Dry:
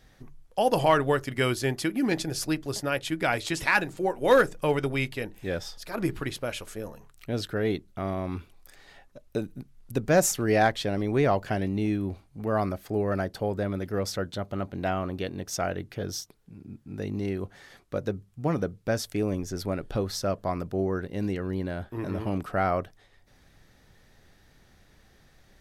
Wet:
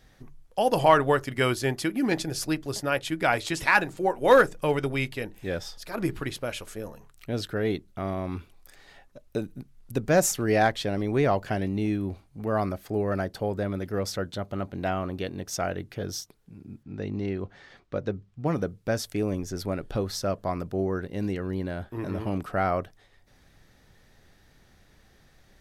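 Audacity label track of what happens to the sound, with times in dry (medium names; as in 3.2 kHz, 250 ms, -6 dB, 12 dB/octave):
0.780000	4.470000	dynamic bell 950 Hz, up to +4 dB, over -31 dBFS, Q 0.78
16.830000	18.460000	low-pass 4.7 kHz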